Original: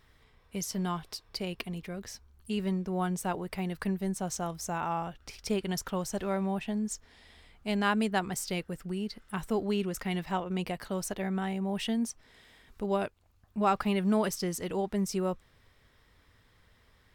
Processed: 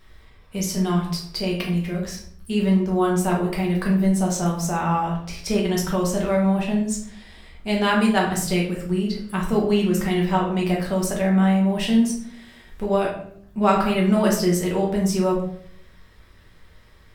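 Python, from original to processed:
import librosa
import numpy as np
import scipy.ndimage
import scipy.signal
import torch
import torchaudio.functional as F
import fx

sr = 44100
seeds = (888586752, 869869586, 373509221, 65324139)

y = fx.room_shoebox(x, sr, seeds[0], volume_m3=96.0, walls='mixed', distance_m=1.1)
y = y * 10.0 ** (5.0 / 20.0)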